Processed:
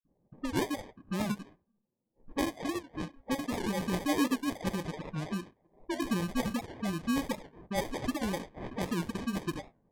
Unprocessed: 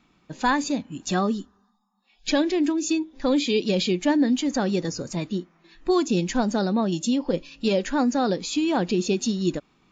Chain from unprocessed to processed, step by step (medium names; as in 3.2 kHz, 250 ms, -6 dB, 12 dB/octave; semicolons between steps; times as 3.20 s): random holes in the spectrogram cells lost 34%; graphic EQ with 31 bands 400 Hz -11 dB, 800 Hz -8 dB, 2 kHz +11 dB; flange 1.4 Hz, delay 6.8 ms, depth 2.6 ms, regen -80%; phase dispersion highs, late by 138 ms, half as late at 1.5 kHz; sample-and-hold 32×; level-controlled noise filter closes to 560 Hz, open at -27.5 dBFS; warped record 78 rpm, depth 160 cents; trim -2 dB